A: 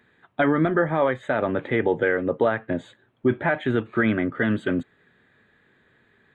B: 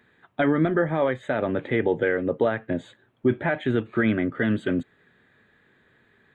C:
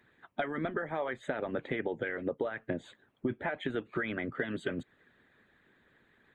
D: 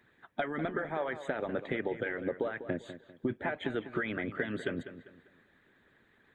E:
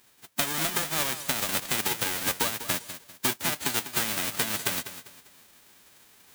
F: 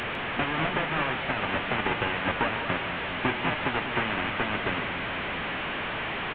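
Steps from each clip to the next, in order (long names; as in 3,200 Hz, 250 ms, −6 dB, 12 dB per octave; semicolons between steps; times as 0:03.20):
dynamic equaliser 1,100 Hz, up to −5 dB, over −38 dBFS, Q 1.1
harmonic and percussive parts rebalanced harmonic −15 dB; downward compressor 6 to 1, threshold −30 dBFS, peak gain reduction 11.5 dB
delay with a low-pass on its return 198 ms, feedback 33%, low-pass 3,300 Hz, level −12 dB
spectral envelope flattened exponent 0.1; reversed playback; upward compression, threshold −55 dBFS; reversed playback; level +6 dB
linear delta modulator 16 kbit/s, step −29 dBFS; single-tap delay 152 ms −12.5 dB; level +4 dB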